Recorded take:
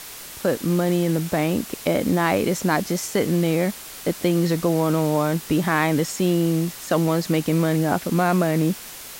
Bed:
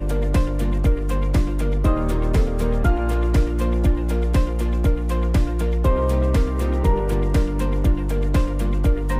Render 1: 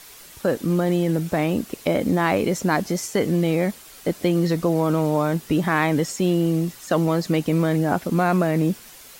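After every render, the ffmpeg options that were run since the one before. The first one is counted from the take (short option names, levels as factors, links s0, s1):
-af "afftdn=nr=8:nf=-38"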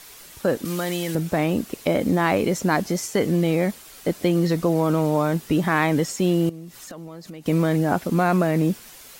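-filter_complex "[0:a]asettb=1/sr,asplit=3[s0][s1][s2];[s0]atrim=end=0.654[s3];[s1]atrim=start=0.65:end=1.15,asetpts=PTS-STARTPTS,afade=t=in:d=0.004:c=qsin,afade=t=out:st=0.496:d=0.004:c=qsin,tiltshelf=f=1100:g=-8[s4];[s2]atrim=start=1.146[s5];[s3][s4]acrossfade=d=0.004:c1=hsin:c2=qsin[s6];[s6][s5]acrossfade=d=0.004:c1=qsin:c2=hsin,asettb=1/sr,asplit=3[s7][s8][s9];[s7]atrim=end=6.494[s10];[s8]atrim=start=6.49:end=7.46,asetpts=PTS-STARTPTS,afade=t=in:d=0.004:c=qsin,afade=t=out:st=0.966:d=0.004:c=qsin,acompressor=threshold=0.0158:ratio=6:attack=3.2:release=140:knee=1:detection=peak[s11];[s9]atrim=start=7.456[s12];[s10][s11]acrossfade=d=0.004:c1=hsin:c2=qsin[s13];[s13][s12]acrossfade=d=0.004:c1=qsin:c2=hsin"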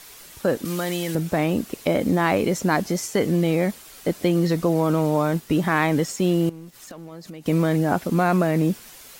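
-filter_complex "[0:a]asettb=1/sr,asplit=3[s0][s1][s2];[s0]atrim=end=5.314[s3];[s1]atrim=start=5.31:end=7.12,asetpts=PTS-STARTPTS,afade=t=in:d=0.004:c=qsin,afade=t=out:st=1.806:d=0.004:c=qsin,aeval=exprs='sgn(val(0))*max(abs(val(0))-0.00299,0)':c=same[s4];[s2]atrim=start=7.116[s5];[s3][s4]acrossfade=d=0.004:c1=hsin:c2=qsin[s6];[s6][s5]acrossfade=d=0.004:c1=qsin:c2=hsin"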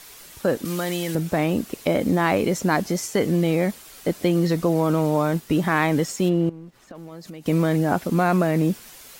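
-filter_complex "[0:a]asplit=3[s0][s1][s2];[s0]afade=t=out:st=6.28:d=0.02[s3];[s1]lowpass=f=1400:p=1,afade=t=in:st=6.28:d=0.02,afade=t=out:st=6.94:d=0.02[s4];[s2]afade=t=in:st=6.94:d=0.02[s5];[s3][s4][s5]amix=inputs=3:normalize=0"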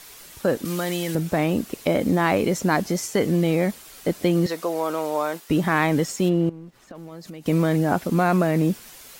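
-filter_complex "[0:a]asettb=1/sr,asplit=3[s0][s1][s2];[s0]atrim=end=4.464[s3];[s1]atrim=start=4.46:end=5.5,asetpts=PTS-STARTPTS,afade=t=in:d=0.004:c=qsin,afade=t=out:st=1.036:d=0.004:c=qsin,highpass=490[s4];[s2]atrim=start=5.496[s5];[s3][s4]acrossfade=d=0.004:c1=hsin:c2=qsin[s6];[s6][s5]acrossfade=d=0.004:c1=qsin:c2=hsin"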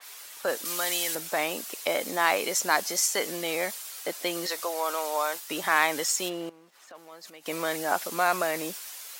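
-af "highpass=730,adynamicequalizer=threshold=0.00891:dfrequency=3500:dqfactor=0.7:tfrequency=3500:tqfactor=0.7:attack=5:release=100:ratio=0.375:range=3.5:mode=boostabove:tftype=highshelf"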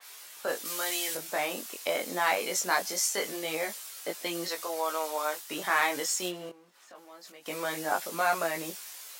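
-af "flanger=delay=18:depth=4.3:speed=0.23"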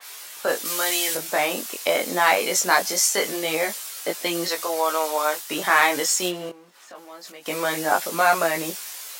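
-af "volume=2.66"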